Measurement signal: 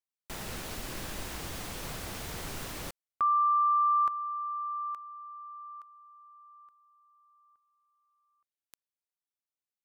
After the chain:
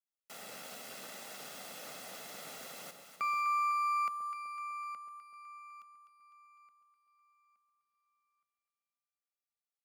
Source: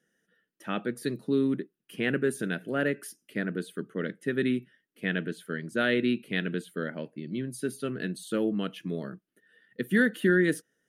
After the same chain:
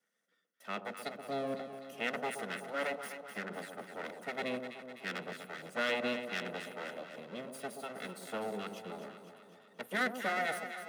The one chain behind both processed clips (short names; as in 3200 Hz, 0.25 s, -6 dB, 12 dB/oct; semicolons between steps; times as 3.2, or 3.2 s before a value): minimum comb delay 1.5 ms; HPF 210 Hz 24 dB/oct; echo with dull and thin repeats by turns 0.126 s, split 930 Hz, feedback 76%, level -6.5 dB; gain -5.5 dB